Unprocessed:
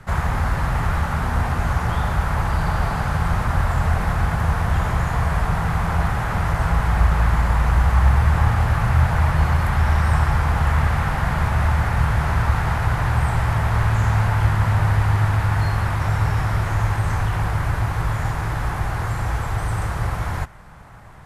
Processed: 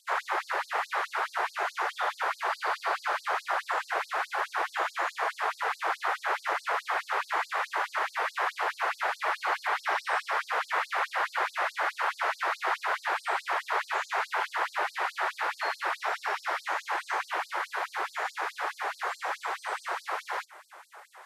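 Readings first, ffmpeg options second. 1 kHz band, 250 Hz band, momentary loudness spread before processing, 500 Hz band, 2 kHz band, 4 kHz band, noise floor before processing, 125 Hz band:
−4.0 dB, −26.0 dB, 6 LU, −5.5 dB, −2.5 dB, −2.0 dB, −26 dBFS, below −40 dB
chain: -filter_complex "[0:a]afftfilt=real='re*lt(hypot(re,im),0.316)':imag='im*lt(hypot(re,im),0.316)':win_size=1024:overlap=0.75,acrossover=split=5500[link_01][link_02];[link_02]acompressor=threshold=-58dB:ratio=4:attack=1:release=60[link_03];[link_01][link_03]amix=inputs=2:normalize=0,afftfilt=real='re*gte(b*sr/1024,320*pow(4200/320,0.5+0.5*sin(2*PI*4.7*pts/sr)))':imag='im*gte(b*sr/1024,320*pow(4200/320,0.5+0.5*sin(2*PI*4.7*pts/sr)))':win_size=1024:overlap=0.75"

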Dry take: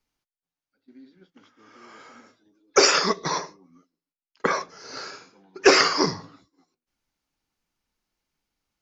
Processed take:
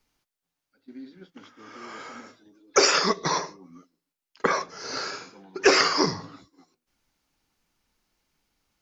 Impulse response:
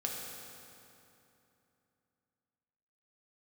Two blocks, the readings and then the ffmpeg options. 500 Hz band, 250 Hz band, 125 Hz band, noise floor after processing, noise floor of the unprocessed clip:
−2.0 dB, −1.5 dB, 0.0 dB, below −85 dBFS, below −85 dBFS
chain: -af "acompressor=threshold=-39dB:ratio=1.5,volume=7dB"

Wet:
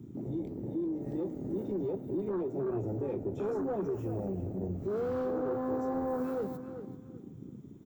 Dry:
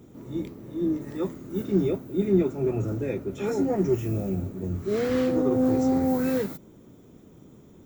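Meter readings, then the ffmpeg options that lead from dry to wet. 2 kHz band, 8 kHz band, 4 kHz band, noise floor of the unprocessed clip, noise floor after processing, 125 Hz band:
−11.5 dB, below −15 dB, below −15 dB, −52 dBFS, −49 dBFS, −8.5 dB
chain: -filter_complex "[0:a]acrossover=split=380|3000[link_01][link_02][link_03];[link_01]acompressor=threshold=-36dB:ratio=3[link_04];[link_04][link_02][link_03]amix=inputs=3:normalize=0,asoftclip=type=tanh:threshold=-27.5dB,afwtdn=0.0141,acompressor=threshold=-40dB:ratio=2.5,asplit=2[link_05][link_06];[link_06]adelay=386,lowpass=frequency=4700:poles=1,volume=-10dB,asplit=2[link_07][link_08];[link_08]adelay=386,lowpass=frequency=4700:poles=1,volume=0.23,asplit=2[link_09][link_10];[link_10]adelay=386,lowpass=frequency=4700:poles=1,volume=0.23[link_11];[link_05][link_07][link_09][link_11]amix=inputs=4:normalize=0,volume=5.5dB"

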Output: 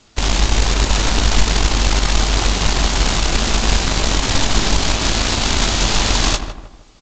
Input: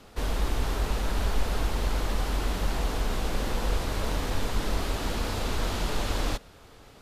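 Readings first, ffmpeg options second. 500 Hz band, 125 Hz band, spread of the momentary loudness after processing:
+9.0 dB, +11.5 dB, 1 LU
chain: -filter_complex "[0:a]equalizer=frequency=490:width_type=o:width=0.3:gain=-15,crystalizer=i=5:c=0,aeval=exprs='0.282*(cos(1*acos(clip(val(0)/0.282,-1,1)))-cos(1*PI/2))+0.0355*(cos(7*acos(clip(val(0)/0.282,-1,1)))-cos(7*PI/2))':channel_layout=same,asplit=2[link_01][link_02];[link_02]acrusher=samples=24:mix=1:aa=0.000001,volume=-10dB[link_03];[link_01][link_03]amix=inputs=2:normalize=0,asplit=2[link_04][link_05];[link_05]adelay=18,volume=-10dB[link_06];[link_04][link_06]amix=inputs=2:normalize=0,asplit=2[link_07][link_08];[link_08]adelay=156,lowpass=frequency=1600:poles=1,volume=-12dB,asplit=2[link_09][link_10];[link_10]adelay=156,lowpass=frequency=1600:poles=1,volume=0.4,asplit=2[link_11][link_12];[link_12]adelay=156,lowpass=frequency=1600:poles=1,volume=0.4,asplit=2[link_13][link_14];[link_14]adelay=156,lowpass=frequency=1600:poles=1,volume=0.4[link_15];[link_07][link_09][link_11][link_13][link_15]amix=inputs=5:normalize=0,alimiter=level_in=14dB:limit=-1dB:release=50:level=0:latency=1,volume=-1dB" -ar 16000 -c:a g722

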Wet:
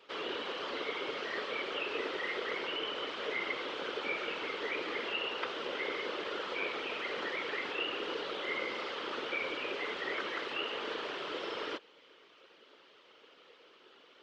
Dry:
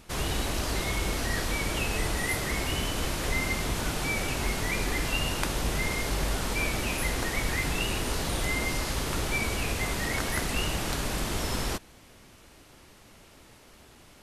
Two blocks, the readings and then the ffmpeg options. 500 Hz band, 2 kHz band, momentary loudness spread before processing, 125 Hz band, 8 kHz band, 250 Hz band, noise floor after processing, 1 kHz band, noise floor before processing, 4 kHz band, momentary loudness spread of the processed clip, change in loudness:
−2.5 dB, −5.5 dB, 2 LU, −31.0 dB, −27.5 dB, −11.0 dB, −61 dBFS, −5.0 dB, −54 dBFS, −5.0 dB, 3 LU, −7.0 dB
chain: -filter_complex "[0:a]highpass=frequency=370:width=0.5412,highpass=frequency=370:width=1.3066,equalizer=frequency=450:width_type=q:width=4:gain=10,equalizer=frequency=710:width_type=q:width=4:gain=-7,equalizer=frequency=1300:width_type=q:width=4:gain=5,equalizer=frequency=3100:width_type=q:width=4:gain=8,lowpass=frequency=4400:width=0.5412,lowpass=frequency=4400:width=1.3066,afftfilt=real='hypot(re,im)*cos(2*PI*random(0))':imag='hypot(re,im)*sin(2*PI*random(1))':win_size=512:overlap=0.75,acrossover=split=3000[link_01][link_02];[link_02]acompressor=threshold=-48dB:ratio=4:attack=1:release=60[link_03];[link_01][link_03]amix=inputs=2:normalize=0"

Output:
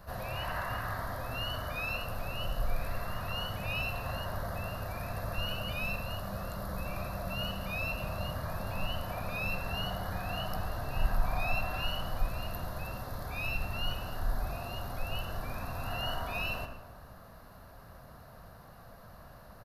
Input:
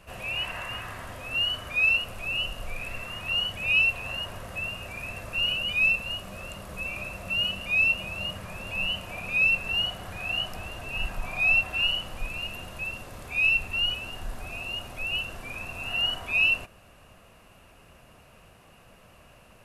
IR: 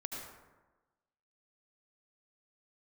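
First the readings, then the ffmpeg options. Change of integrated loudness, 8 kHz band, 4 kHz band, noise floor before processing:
−10.0 dB, −4.5 dB, −12.0 dB, −55 dBFS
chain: -filter_complex "[0:a]firequalizer=gain_entry='entry(130,0);entry(360,-7);entry(640,-1);entry(1700,-2);entry(2600,-20);entry(4100,1);entry(8000,-11);entry(13000,8)':delay=0.05:min_phase=1,asplit=2[link_01][link_02];[1:a]atrim=start_sample=2205,lowpass=6100[link_03];[link_02][link_03]afir=irnorm=-1:irlink=0,volume=-2dB[link_04];[link_01][link_04]amix=inputs=2:normalize=0"

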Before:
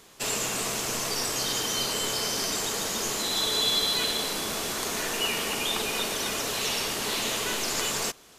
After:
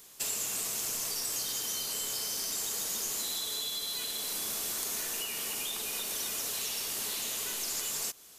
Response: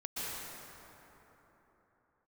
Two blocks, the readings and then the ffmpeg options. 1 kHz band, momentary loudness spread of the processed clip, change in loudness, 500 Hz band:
−13.5 dB, 2 LU, −5.5 dB, −14.0 dB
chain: -af "acompressor=threshold=-31dB:ratio=6,aemphasis=mode=production:type=75kf,volume=-9dB"

